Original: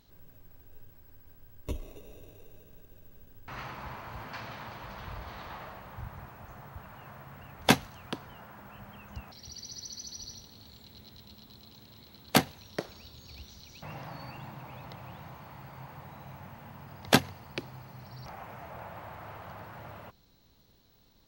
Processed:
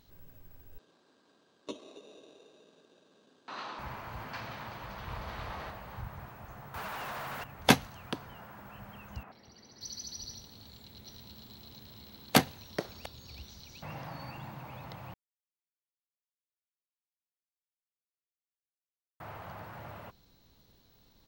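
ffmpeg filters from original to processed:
-filter_complex "[0:a]asettb=1/sr,asplit=3[s0][s1][s2];[s0]atrim=end=0.784[s3];[s1]atrim=start=0.78:end=3.79,asetpts=PTS-STARTPTS,afade=t=in:d=0.004:c=qsin,afade=t=out:st=3.006:d=0.004:c=qsin,highpass=f=230:w=0.5412,highpass=f=230:w=1.3066,equalizer=f=1100:t=q:w=4:g=3,equalizer=f=2100:t=q:w=4:g=-7,equalizer=f=3900:t=q:w=4:g=9,lowpass=f=7600:w=0.5412,lowpass=f=7600:w=1.3066[s4];[s2]atrim=start=3.786[s5];[s3][s4]acrossfade=d=0.004:c1=hsin:c2=qsin[s6];[s6][s5]acrossfade=d=0.004:c1=qsin:c2=hsin,asplit=2[s7][s8];[s8]afade=t=in:st=4.77:d=0.01,afade=t=out:st=5.39:d=0.01,aecho=0:1:310|620|930|1240|1550:0.841395|0.294488|0.103071|0.0360748|0.0126262[s9];[s7][s9]amix=inputs=2:normalize=0,asettb=1/sr,asplit=3[s10][s11][s12];[s10]atrim=end=6.744[s13];[s11]atrim=start=6.74:end=7.44,asetpts=PTS-STARTPTS,afade=t=in:d=0.004:c=qsin,afade=t=out:st=0.696:d=0.004:c=qsin,asplit=2[s14][s15];[s15]highpass=f=720:p=1,volume=44.7,asoftclip=type=tanh:threshold=0.0237[s16];[s14][s16]amix=inputs=2:normalize=0,lowpass=f=4500:p=1,volume=0.501[s17];[s12]atrim=start=7.436[s18];[s13][s17]acrossfade=d=0.004:c1=hsin:c2=qsin[s19];[s19][s18]acrossfade=d=0.004:c1=qsin:c2=hsin,asettb=1/sr,asplit=3[s20][s21][s22];[s20]atrim=end=9.234[s23];[s21]atrim=start=9.23:end=9.81,asetpts=PTS-STARTPTS,afade=t=in:d=0.004:c=qsin,afade=t=out:st=0.576:d=0.004:c=qsin,acrossover=split=180 2500:gain=0.224 1 0.126[s24][s25][s26];[s24][s25][s26]amix=inputs=3:normalize=0[s27];[s22]atrim=start=9.806[s28];[s23][s27]acrossfade=d=0.004:c1=hsin:c2=qsin[s29];[s29][s28]acrossfade=d=0.004:c1=qsin:c2=hsin,asplit=3[s30][s31][s32];[s30]afade=t=out:st=11.05:d=0.02[s33];[s31]aecho=1:1:703:0.562,afade=t=in:st=11.05:d=0.02,afade=t=out:st=13.04:d=0.02[s34];[s32]afade=t=in:st=13.04:d=0.02[s35];[s33][s34][s35]amix=inputs=3:normalize=0,asplit=3[s36][s37][s38];[s36]atrim=end=15.14,asetpts=PTS-STARTPTS,afade=t=out:st=15.136:d=0.004:c=hsin[s39];[s37]atrim=start=15.14:end=19.2,asetpts=PTS-STARTPTS,volume=0[s40];[s38]atrim=start=19.2,asetpts=PTS-STARTPTS,afade=t=in:d=0.004:c=hsin[s41];[s39][s40][s41]concat=n=3:v=0:a=1"

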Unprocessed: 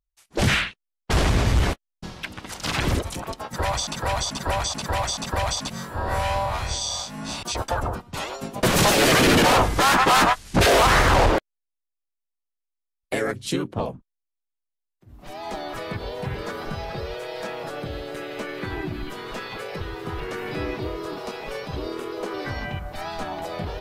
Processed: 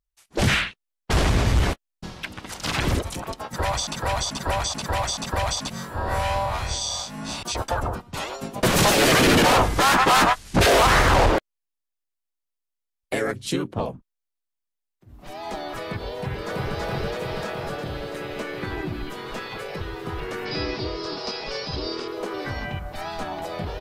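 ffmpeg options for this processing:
-filter_complex "[0:a]asplit=2[s0][s1];[s1]afade=t=in:st=16.17:d=0.01,afade=t=out:st=16.77:d=0.01,aecho=0:1:330|660|990|1320|1650|1980|2310|2640|2970|3300|3630|3960:0.944061|0.708046|0.531034|0.398276|0.298707|0.22403|0.168023|0.126017|0.0945127|0.0708845|0.0531634|0.0398725[s2];[s0][s2]amix=inputs=2:normalize=0,asettb=1/sr,asplit=3[s3][s4][s5];[s3]atrim=end=20.454[s6];[s4]atrim=start=20.45:end=22.08,asetpts=PTS-STARTPTS,afade=t=in:d=0.004:c=qsin,afade=t=out:st=1.626:d=0.004:c=qsin,lowpass=f=5000:t=q:w=6.3[s7];[s5]atrim=start=22.076[s8];[s6][s7]acrossfade=d=0.004:c1=hsin:c2=qsin[s9];[s9][s8]acrossfade=d=0.004:c1=qsin:c2=hsin"

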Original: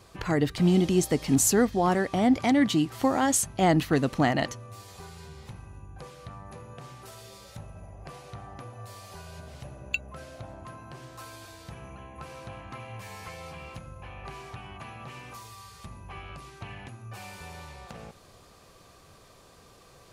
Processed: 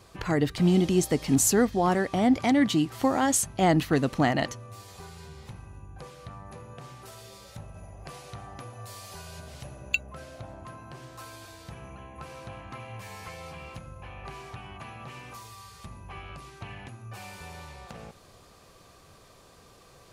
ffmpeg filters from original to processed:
-filter_complex "[0:a]asettb=1/sr,asplit=3[s0][s1][s2];[s0]atrim=end=7.744[s3];[s1]atrim=start=7.74:end=10.03,asetpts=PTS-STARTPTS,afade=t=in:d=0.004:c=qsin,afade=t=out:st=2.286:d=0.004:c=qsin,highshelf=f=2700:g=6[s4];[s2]atrim=start=10.026[s5];[s3][s4]acrossfade=d=0.004:c1=hsin:c2=qsin[s6];[s6][s5]acrossfade=d=0.004:c1=qsin:c2=hsin"

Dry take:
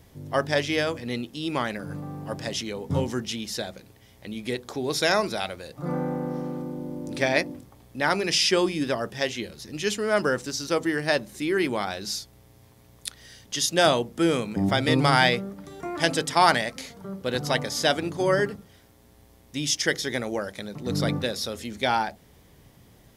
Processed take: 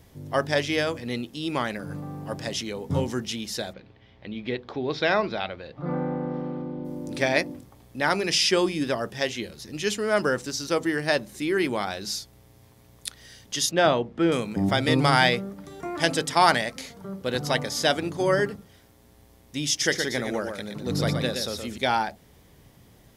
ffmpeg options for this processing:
-filter_complex "[0:a]asplit=3[s0][s1][s2];[s0]afade=t=out:st=3.72:d=0.02[s3];[s1]lowpass=f=3800:w=0.5412,lowpass=f=3800:w=1.3066,afade=t=in:st=3.72:d=0.02,afade=t=out:st=6.84:d=0.02[s4];[s2]afade=t=in:st=6.84:d=0.02[s5];[s3][s4][s5]amix=inputs=3:normalize=0,asettb=1/sr,asplit=3[s6][s7][s8];[s6]atrim=end=13.714[s9];[s7]atrim=start=13.71:end=14.32,asetpts=PTS-STARTPTS,afade=t=in:d=0.004:c=qsin,afade=t=out:st=0.606:d=0.004:c=qsin,lowpass=2800[s10];[s8]atrim=start=14.316[s11];[s9][s10]acrossfade=d=0.004:c1=hsin:c2=qsin[s12];[s12][s11]acrossfade=d=0.004:c1=qsin:c2=hsin,asettb=1/sr,asplit=3[s13][s14][s15];[s13]atrim=end=19.694[s16];[s14]atrim=start=19.69:end=21.78,asetpts=PTS-STARTPTS,afade=t=in:d=0.004:c=qsin,afade=t=out:st=2.086:d=0.004:c=qsin,aecho=1:1:121:0.501,atrim=end_sample=92169[s17];[s15]atrim=start=21.776[s18];[s16][s17]acrossfade=d=0.004:c1=hsin:c2=qsin[s19];[s19][s18]acrossfade=d=0.004:c1=qsin:c2=hsin"

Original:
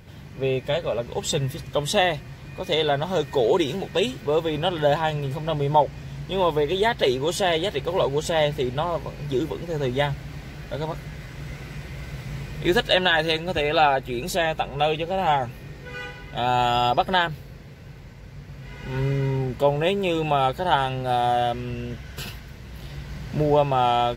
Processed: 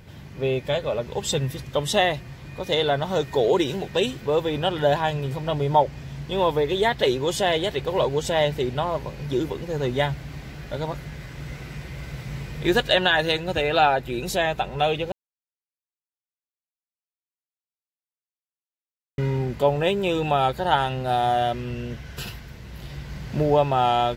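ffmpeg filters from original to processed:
-filter_complex "[0:a]asplit=3[s0][s1][s2];[s0]atrim=end=15.12,asetpts=PTS-STARTPTS,afade=t=out:st=15.116:d=0.004:c=hsin[s3];[s1]atrim=start=15.12:end=19.18,asetpts=PTS-STARTPTS,volume=0[s4];[s2]atrim=start=19.18,asetpts=PTS-STARTPTS,afade=t=in:d=0.004:c=hsin[s5];[s3][s4][s5]concat=n=3:v=0:a=1"

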